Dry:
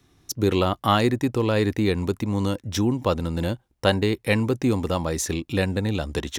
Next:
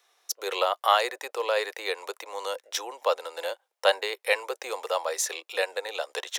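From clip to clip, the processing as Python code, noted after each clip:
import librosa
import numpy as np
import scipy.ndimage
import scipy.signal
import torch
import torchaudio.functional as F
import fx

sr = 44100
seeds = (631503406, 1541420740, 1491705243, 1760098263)

y = scipy.signal.sosfilt(scipy.signal.butter(8, 480.0, 'highpass', fs=sr, output='sos'), x)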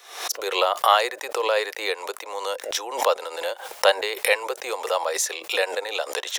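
y = fx.pre_swell(x, sr, db_per_s=94.0)
y = y * librosa.db_to_amplitude(3.5)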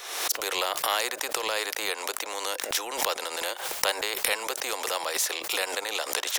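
y = fx.spectral_comp(x, sr, ratio=2.0)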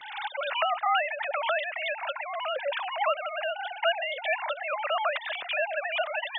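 y = fx.sine_speech(x, sr)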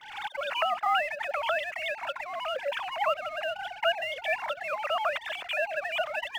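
y = fx.law_mismatch(x, sr, coded='A')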